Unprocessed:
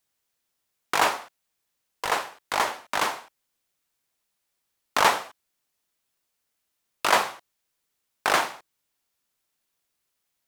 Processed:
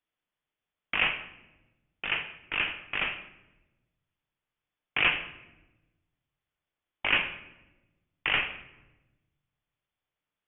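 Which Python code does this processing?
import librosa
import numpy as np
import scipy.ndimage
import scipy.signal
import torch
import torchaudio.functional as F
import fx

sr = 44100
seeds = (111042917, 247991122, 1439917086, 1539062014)

y = fx.freq_invert(x, sr, carrier_hz=3500)
y = fx.room_shoebox(y, sr, seeds[0], volume_m3=510.0, walls='mixed', distance_m=0.43)
y = y * librosa.db_to_amplitude(-5.0)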